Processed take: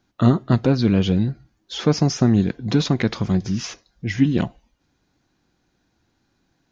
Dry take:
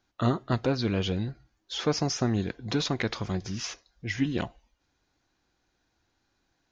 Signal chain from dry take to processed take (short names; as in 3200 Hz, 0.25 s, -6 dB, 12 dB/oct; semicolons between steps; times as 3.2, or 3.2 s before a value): bell 180 Hz +9.5 dB 1.8 oct; gain +3.5 dB